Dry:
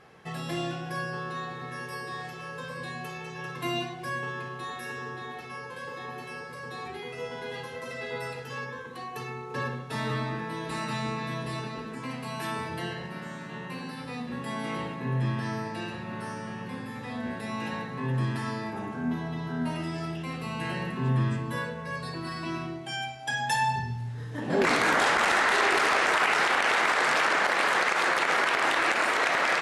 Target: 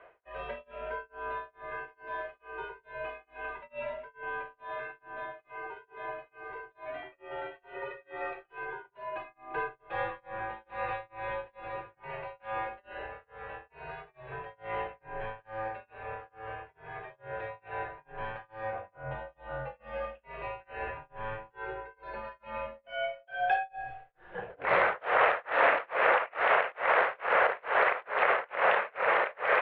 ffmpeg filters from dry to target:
-af "highpass=f=150:t=q:w=0.5412,highpass=f=150:t=q:w=1.307,lowpass=f=2900:t=q:w=0.5176,lowpass=f=2900:t=q:w=0.7071,lowpass=f=2900:t=q:w=1.932,afreqshift=-110,tremolo=f=2.3:d=0.99,lowshelf=f=370:t=q:w=3:g=-10.5"

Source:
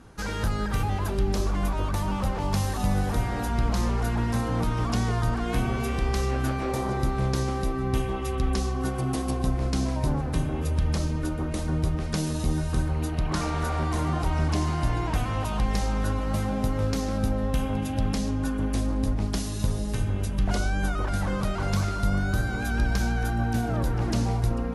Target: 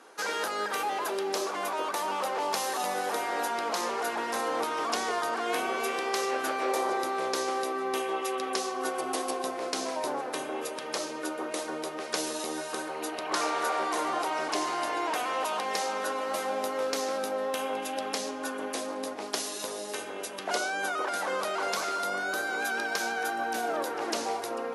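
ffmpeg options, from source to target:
-af "highpass=f=390:w=0.5412,highpass=f=390:w=1.3066,volume=1.41"

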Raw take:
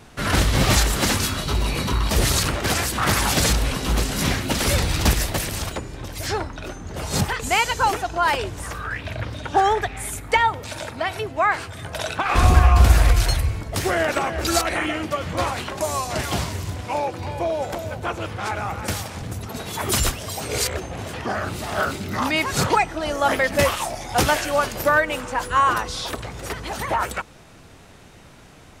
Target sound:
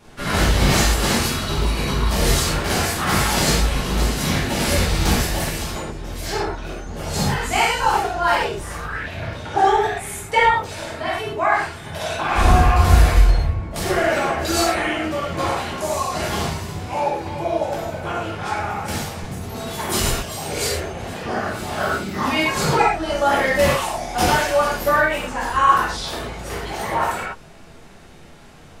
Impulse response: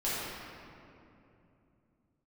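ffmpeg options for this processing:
-filter_complex "[0:a]asettb=1/sr,asplit=3[s0][s1][s2];[s0]atrim=end=13.184[s3];[s1]atrim=start=13.18:end=13.71,asetpts=PTS-STARTPTS,afade=t=in:d=0.004:c=qsin,afade=t=out:st=0.526:d=0.004:c=qsin,lowpass=f=1200:p=1[s4];[s2]atrim=start=13.706[s5];[s3][s4]acrossfade=d=0.004:c1=hsin:c2=qsin[s6];[s6][s5]acrossfade=d=0.004:c1=qsin:c2=hsin[s7];[1:a]atrim=start_sample=2205,atrim=end_sample=6174[s8];[s7][s8]afir=irnorm=-1:irlink=0,volume=0.631"

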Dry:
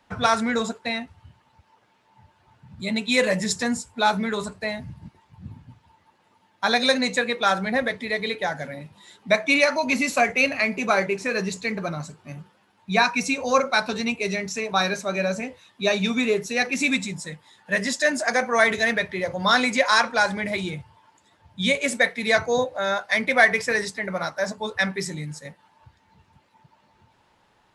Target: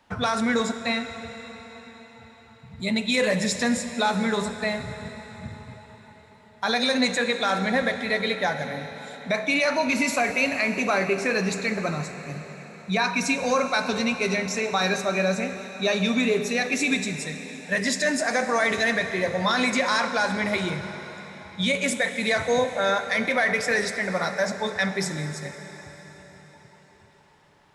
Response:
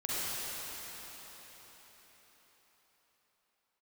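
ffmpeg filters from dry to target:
-filter_complex "[0:a]alimiter=limit=0.188:level=0:latency=1:release=41,asplit=2[s0][s1];[1:a]atrim=start_sample=2205[s2];[s1][s2]afir=irnorm=-1:irlink=0,volume=0.188[s3];[s0][s3]amix=inputs=2:normalize=0"

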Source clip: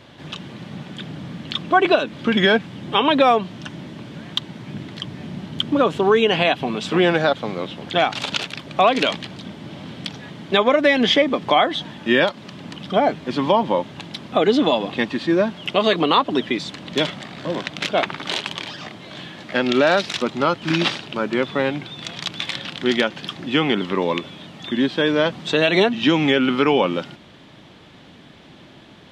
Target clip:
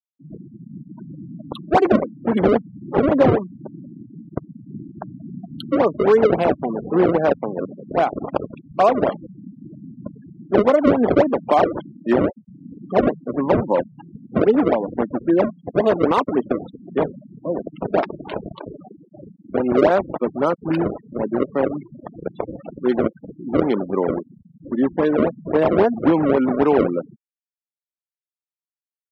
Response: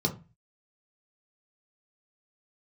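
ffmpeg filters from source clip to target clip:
-filter_complex "[0:a]asettb=1/sr,asplit=3[s0][s1][s2];[s0]atrim=end=7.764[s3];[s1]atrim=start=7.76:end=8.46,asetpts=PTS-STARTPTS,afade=t=in:d=0.004:c=qsin,afade=t=out:st=0.696:d=0.004:c=qsin,bandreject=f=60:t=h:w=6,bandreject=f=120:t=h:w=6,bandreject=f=180:t=h:w=6,bandreject=f=240:t=h:w=6,bandreject=f=300:t=h:w=6,bandreject=f=360:t=h:w=6,bandreject=f=420:t=h:w=6[s4];[s2]atrim=start=8.456[s5];[s3][s4]acrossfade=d=0.004:c1=hsin:c2=qsin[s6];[s6][s5]acrossfade=d=0.004:c1=qsin:c2=hsin,acrusher=samples=30:mix=1:aa=0.000001:lfo=1:lforange=48:lforate=3.7,afftfilt=real='re*gte(hypot(re,im),0.0794)':imag='im*gte(hypot(re,im),0.0794)':win_size=1024:overlap=0.75,bandpass=f=590:t=q:w=0.74:csg=0,lowshelf=f=410:g=7"

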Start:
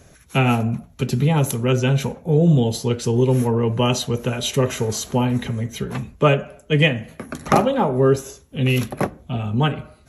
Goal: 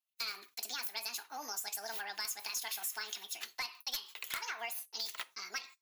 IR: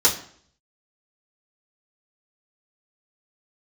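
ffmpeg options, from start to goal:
-filter_complex "[0:a]agate=range=0.0178:threshold=0.00794:ratio=16:detection=peak,highpass=1500,aeval=exprs='0.562*(cos(1*acos(clip(val(0)/0.562,-1,1)))-cos(1*PI/2))+0.282*(cos(3*acos(clip(val(0)/0.562,-1,1)))-cos(3*PI/2))+0.01*(cos(4*acos(clip(val(0)/0.562,-1,1)))-cos(4*PI/2))+0.0178*(cos(7*acos(clip(val(0)/0.562,-1,1)))-cos(7*PI/2))':c=same,acompressor=threshold=0.0158:ratio=6,asplit=2[s0][s1];[s1]aderivative[s2];[1:a]atrim=start_sample=2205[s3];[s2][s3]afir=irnorm=-1:irlink=0,volume=0.0891[s4];[s0][s4]amix=inputs=2:normalize=0,asetrate=76440,aresample=44100"

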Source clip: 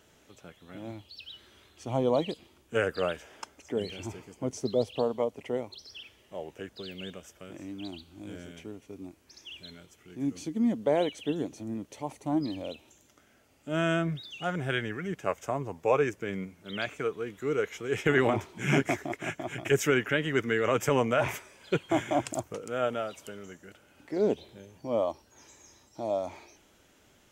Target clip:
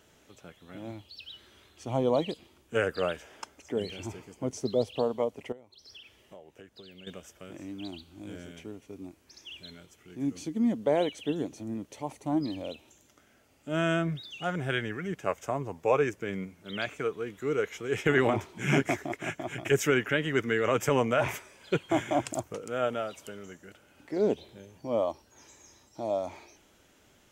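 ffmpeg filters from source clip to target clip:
-filter_complex "[0:a]asettb=1/sr,asplit=3[s0][s1][s2];[s0]atrim=end=5.524[s3];[s1]atrim=start=5.52:end=7.07,asetpts=PTS-STARTPTS,afade=t=in:d=0.004:c=qsin,afade=t=out:st=1.546:d=0.004:c=qsin,acompressor=threshold=0.00501:ratio=16[s4];[s2]atrim=start=7.066[s5];[s3][s4]acrossfade=d=0.004:c1=hsin:c2=qsin[s6];[s6][s5]acrossfade=d=0.004:c1=qsin:c2=hsin"

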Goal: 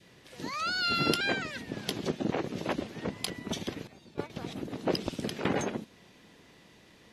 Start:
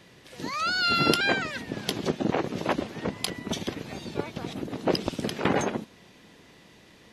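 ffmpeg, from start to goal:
-filter_complex "[0:a]asettb=1/sr,asplit=3[s0][s1][s2];[s0]atrim=end=3.874[s3];[s1]atrim=start=3.87:end=4.3,asetpts=PTS-STARTPTS,afade=t=in:d=0.004:c=qsin,afade=t=out:st=0.426:d=0.004:c=qsin,agate=range=0.224:threshold=0.0282:ratio=16:detection=peak[s4];[s2]atrim=start=4.296[s5];[s3][s4]acrossfade=d=0.004:c1=hsin:c2=qsin[s6];[s6][s5]acrossfade=d=0.004:c1=qsin:c2=hsin,asplit=2[s7][s8];[s8]asoftclip=type=tanh:threshold=0.106,volume=0.251[s9];[s7][s9]amix=inputs=2:normalize=0,adynamicequalizer=threshold=0.01:dfrequency=1000:dqfactor=1:tfrequency=1000:tqfactor=1:attack=5:release=100:ratio=0.375:range=2:mode=cutabove:tftype=bell,volume=0.531"

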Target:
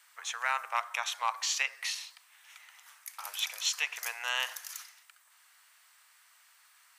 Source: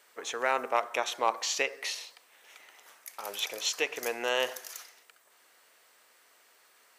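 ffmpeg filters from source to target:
-af "highpass=f=950:w=0.5412,highpass=f=950:w=1.3066,equalizer=f=9200:w=2.1:g=2.5"

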